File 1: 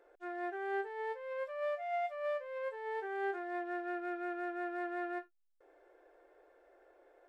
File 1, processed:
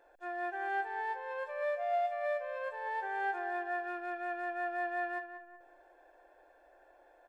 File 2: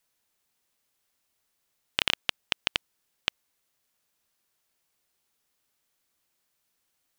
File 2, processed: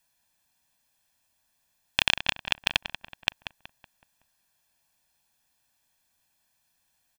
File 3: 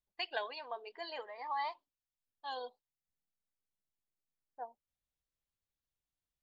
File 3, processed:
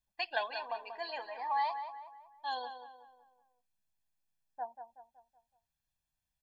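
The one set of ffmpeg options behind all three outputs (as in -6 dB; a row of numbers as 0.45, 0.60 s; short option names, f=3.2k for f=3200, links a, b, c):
-filter_complex "[0:a]aecho=1:1:1.2:0.65,asplit=2[a][b];[b]adelay=187,lowpass=f=2.4k:p=1,volume=-8.5dB,asplit=2[c][d];[d]adelay=187,lowpass=f=2.4k:p=1,volume=0.46,asplit=2[e][f];[f]adelay=187,lowpass=f=2.4k:p=1,volume=0.46,asplit=2[g][h];[h]adelay=187,lowpass=f=2.4k:p=1,volume=0.46,asplit=2[i][j];[j]adelay=187,lowpass=f=2.4k:p=1,volume=0.46[k];[a][c][e][g][i][k]amix=inputs=6:normalize=0,volume=1.5dB"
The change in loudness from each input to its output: +3.0, +3.0, +4.0 LU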